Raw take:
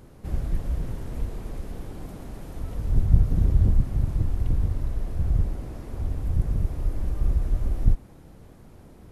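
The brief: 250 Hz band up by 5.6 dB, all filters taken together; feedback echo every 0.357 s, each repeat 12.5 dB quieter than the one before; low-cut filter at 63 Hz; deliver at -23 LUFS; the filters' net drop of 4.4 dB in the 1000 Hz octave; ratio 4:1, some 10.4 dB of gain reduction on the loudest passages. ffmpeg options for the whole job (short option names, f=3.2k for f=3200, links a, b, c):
-af "highpass=63,equalizer=f=250:t=o:g=8.5,equalizer=f=1k:t=o:g=-7,acompressor=threshold=-27dB:ratio=4,aecho=1:1:357|714|1071:0.237|0.0569|0.0137,volume=11dB"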